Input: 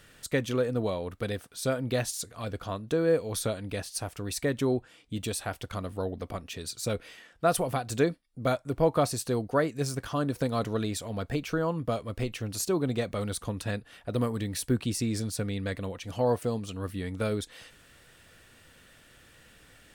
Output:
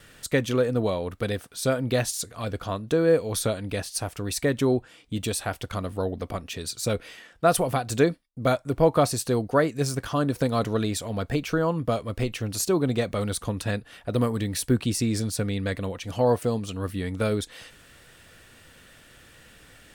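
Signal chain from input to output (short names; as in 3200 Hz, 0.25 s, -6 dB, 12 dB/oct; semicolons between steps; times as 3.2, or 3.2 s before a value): gate with hold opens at -49 dBFS; gain +4.5 dB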